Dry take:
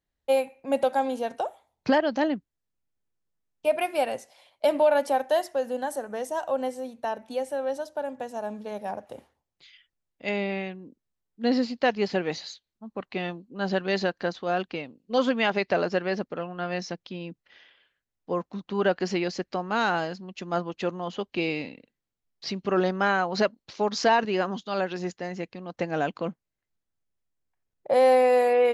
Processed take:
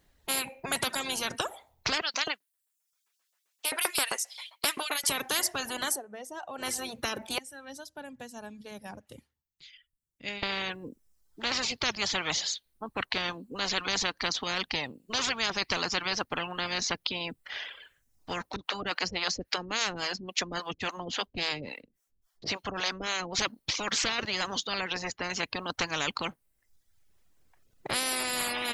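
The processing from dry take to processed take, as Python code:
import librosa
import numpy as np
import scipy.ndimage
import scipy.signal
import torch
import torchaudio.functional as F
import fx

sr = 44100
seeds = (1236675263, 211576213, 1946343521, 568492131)

y = fx.filter_lfo_highpass(x, sr, shape='saw_up', hz=7.6, low_hz=700.0, high_hz=4800.0, q=0.73, at=(2.01, 5.1))
y = fx.tone_stack(y, sr, knobs='6-0-2', at=(7.38, 10.43))
y = fx.harmonic_tremolo(y, sr, hz=3.6, depth_pct=100, crossover_hz=440.0, at=(18.56, 23.39))
y = fx.high_shelf(y, sr, hz=2600.0, db=-11.5, at=(24.67, 25.3))
y = fx.edit(y, sr, fx.fade_down_up(start_s=5.88, length_s=0.81, db=-21.5, fade_s=0.17, curve='qua'), tone=tone)
y = fx.dereverb_blind(y, sr, rt60_s=0.68)
y = fx.spectral_comp(y, sr, ratio=10.0)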